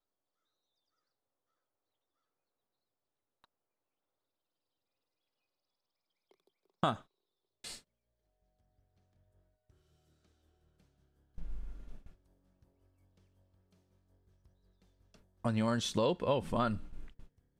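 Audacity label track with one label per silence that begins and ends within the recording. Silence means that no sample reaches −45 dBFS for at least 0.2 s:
6.980000	7.640000	silence
7.780000	11.380000	silence
12.100000	15.450000	silence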